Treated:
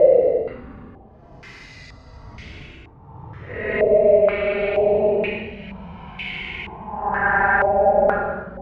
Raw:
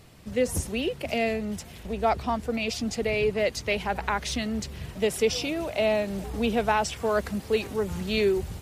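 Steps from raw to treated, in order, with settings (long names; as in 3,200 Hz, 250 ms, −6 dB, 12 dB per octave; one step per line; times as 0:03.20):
output level in coarse steps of 14 dB
extreme stretch with random phases 18×, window 0.05 s, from 0:03.47
low-pass on a step sequencer 2.1 Hz 610–2,500 Hz
level +6.5 dB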